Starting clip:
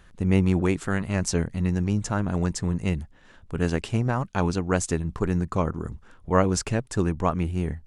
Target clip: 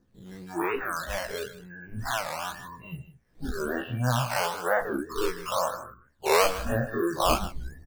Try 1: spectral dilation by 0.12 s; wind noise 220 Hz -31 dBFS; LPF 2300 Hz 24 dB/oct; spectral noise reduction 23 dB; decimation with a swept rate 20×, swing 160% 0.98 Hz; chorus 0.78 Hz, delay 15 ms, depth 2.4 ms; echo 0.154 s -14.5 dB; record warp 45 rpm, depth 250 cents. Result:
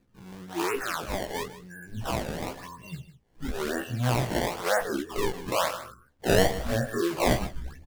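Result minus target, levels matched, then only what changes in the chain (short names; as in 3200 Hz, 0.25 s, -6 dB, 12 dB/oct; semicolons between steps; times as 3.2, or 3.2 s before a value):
decimation with a swept rate: distortion +9 dB
change: decimation with a swept rate 7×, swing 160% 0.98 Hz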